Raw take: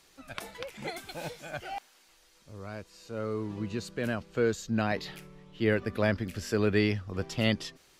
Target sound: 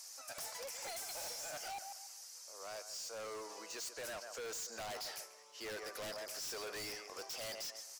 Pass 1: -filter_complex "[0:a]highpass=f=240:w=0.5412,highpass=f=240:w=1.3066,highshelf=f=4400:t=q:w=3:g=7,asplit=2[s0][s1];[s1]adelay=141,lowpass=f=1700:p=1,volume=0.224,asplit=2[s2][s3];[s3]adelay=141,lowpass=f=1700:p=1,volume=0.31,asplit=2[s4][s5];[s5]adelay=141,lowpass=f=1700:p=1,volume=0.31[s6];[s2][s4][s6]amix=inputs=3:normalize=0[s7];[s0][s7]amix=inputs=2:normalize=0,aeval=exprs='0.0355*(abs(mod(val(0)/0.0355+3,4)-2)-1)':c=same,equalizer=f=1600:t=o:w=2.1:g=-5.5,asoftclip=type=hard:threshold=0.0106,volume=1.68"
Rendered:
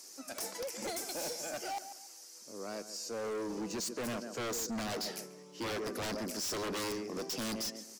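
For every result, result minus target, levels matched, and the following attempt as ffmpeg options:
250 Hz band +12.5 dB; hard clipper: distortion -5 dB
-filter_complex "[0:a]highpass=f=640:w=0.5412,highpass=f=640:w=1.3066,highshelf=f=4400:t=q:w=3:g=7,asplit=2[s0][s1];[s1]adelay=141,lowpass=f=1700:p=1,volume=0.224,asplit=2[s2][s3];[s3]adelay=141,lowpass=f=1700:p=1,volume=0.31,asplit=2[s4][s5];[s5]adelay=141,lowpass=f=1700:p=1,volume=0.31[s6];[s2][s4][s6]amix=inputs=3:normalize=0[s7];[s0][s7]amix=inputs=2:normalize=0,aeval=exprs='0.0355*(abs(mod(val(0)/0.0355+3,4)-2)-1)':c=same,equalizer=f=1600:t=o:w=2.1:g=-5.5,asoftclip=type=hard:threshold=0.0106,volume=1.68"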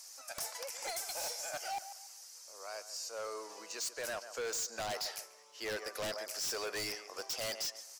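hard clipper: distortion -5 dB
-filter_complex "[0:a]highpass=f=640:w=0.5412,highpass=f=640:w=1.3066,highshelf=f=4400:t=q:w=3:g=7,asplit=2[s0][s1];[s1]adelay=141,lowpass=f=1700:p=1,volume=0.224,asplit=2[s2][s3];[s3]adelay=141,lowpass=f=1700:p=1,volume=0.31,asplit=2[s4][s5];[s5]adelay=141,lowpass=f=1700:p=1,volume=0.31[s6];[s2][s4][s6]amix=inputs=3:normalize=0[s7];[s0][s7]amix=inputs=2:normalize=0,aeval=exprs='0.0355*(abs(mod(val(0)/0.0355+3,4)-2)-1)':c=same,equalizer=f=1600:t=o:w=2.1:g=-5.5,asoftclip=type=hard:threshold=0.00447,volume=1.68"

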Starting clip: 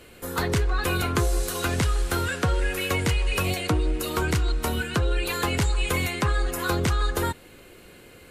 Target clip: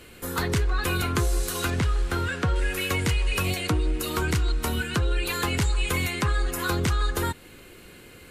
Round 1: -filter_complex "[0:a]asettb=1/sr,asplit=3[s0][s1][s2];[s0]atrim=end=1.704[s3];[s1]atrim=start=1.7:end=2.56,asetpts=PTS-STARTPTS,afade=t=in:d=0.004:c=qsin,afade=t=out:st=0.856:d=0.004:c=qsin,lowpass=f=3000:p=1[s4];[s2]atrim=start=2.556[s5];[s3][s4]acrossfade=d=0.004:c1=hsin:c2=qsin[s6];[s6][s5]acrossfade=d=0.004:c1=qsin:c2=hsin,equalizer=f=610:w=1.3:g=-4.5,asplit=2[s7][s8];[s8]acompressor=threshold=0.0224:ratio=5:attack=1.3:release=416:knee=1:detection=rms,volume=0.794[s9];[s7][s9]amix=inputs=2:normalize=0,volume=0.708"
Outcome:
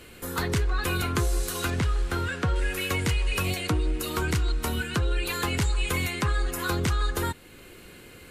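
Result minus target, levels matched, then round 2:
compression: peak gain reduction +6.5 dB
-filter_complex "[0:a]asettb=1/sr,asplit=3[s0][s1][s2];[s0]atrim=end=1.704[s3];[s1]atrim=start=1.7:end=2.56,asetpts=PTS-STARTPTS,afade=t=in:d=0.004:c=qsin,afade=t=out:st=0.856:d=0.004:c=qsin,lowpass=f=3000:p=1[s4];[s2]atrim=start=2.556[s5];[s3][s4]acrossfade=d=0.004:c1=hsin:c2=qsin[s6];[s6][s5]acrossfade=d=0.004:c1=qsin:c2=hsin,equalizer=f=610:w=1.3:g=-4.5,asplit=2[s7][s8];[s8]acompressor=threshold=0.0562:ratio=5:attack=1.3:release=416:knee=1:detection=rms,volume=0.794[s9];[s7][s9]amix=inputs=2:normalize=0,volume=0.708"

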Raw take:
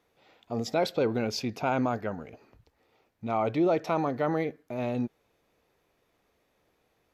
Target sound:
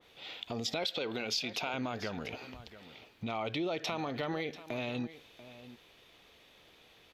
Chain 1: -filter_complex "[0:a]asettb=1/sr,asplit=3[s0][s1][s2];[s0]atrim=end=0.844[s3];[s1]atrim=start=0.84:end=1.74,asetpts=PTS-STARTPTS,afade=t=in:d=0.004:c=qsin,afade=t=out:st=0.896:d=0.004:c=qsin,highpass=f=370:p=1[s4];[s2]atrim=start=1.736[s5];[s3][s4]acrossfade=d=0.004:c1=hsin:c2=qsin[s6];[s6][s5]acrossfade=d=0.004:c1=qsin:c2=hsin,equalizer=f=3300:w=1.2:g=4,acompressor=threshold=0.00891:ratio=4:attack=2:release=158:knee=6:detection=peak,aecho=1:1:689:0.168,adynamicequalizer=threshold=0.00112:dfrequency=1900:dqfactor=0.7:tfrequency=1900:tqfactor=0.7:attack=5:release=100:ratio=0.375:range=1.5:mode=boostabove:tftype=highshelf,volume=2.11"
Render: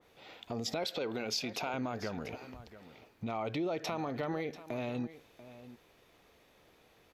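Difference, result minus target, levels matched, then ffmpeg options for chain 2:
4 kHz band -3.0 dB
-filter_complex "[0:a]asettb=1/sr,asplit=3[s0][s1][s2];[s0]atrim=end=0.844[s3];[s1]atrim=start=0.84:end=1.74,asetpts=PTS-STARTPTS,afade=t=in:d=0.004:c=qsin,afade=t=out:st=0.896:d=0.004:c=qsin,highpass=f=370:p=1[s4];[s2]atrim=start=1.736[s5];[s3][s4]acrossfade=d=0.004:c1=hsin:c2=qsin[s6];[s6][s5]acrossfade=d=0.004:c1=qsin:c2=hsin,equalizer=f=3300:w=1.2:g=14.5,acompressor=threshold=0.00891:ratio=4:attack=2:release=158:knee=6:detection=peak,aecho=1:1:689:0.168,adynamicequalizer=threshold=0.00112:dfrequency=1900:dqfactor=0.7:tfrequency=1900:tqfactor=0.7:attack=5:release=100:ratio=0.375:range=1.5:mode=boostabove:tftype=highshelf,volume=2.11"

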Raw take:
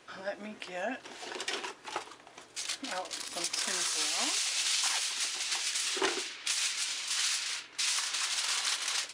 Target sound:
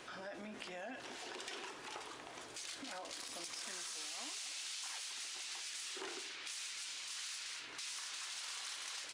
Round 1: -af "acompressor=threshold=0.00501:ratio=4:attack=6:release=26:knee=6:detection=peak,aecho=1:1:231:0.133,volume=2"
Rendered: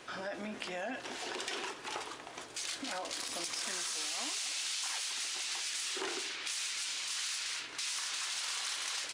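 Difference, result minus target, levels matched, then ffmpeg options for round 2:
compression: peak gain reduction -8 dB
-af "acompressor=threshold=0.0015:ratio=4:attack=6:release=26:knee=6:detection=peak,aecho=1:1:231:0.133,volume=2"

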